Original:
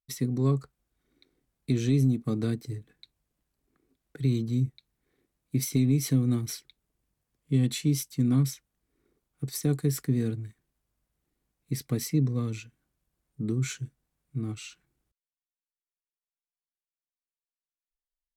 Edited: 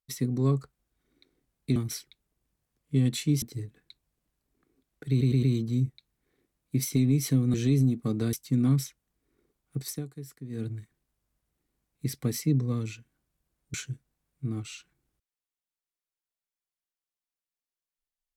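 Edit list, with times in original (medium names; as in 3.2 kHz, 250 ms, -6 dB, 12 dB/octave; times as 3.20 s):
1.76–2.55 s: swap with 6.34–8.00 s
4.23 s: stutter 0.11 s, 4 plays
9.51–10.37 s: dip -15 dB, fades 0.21 s
13.41–13.66 s: delete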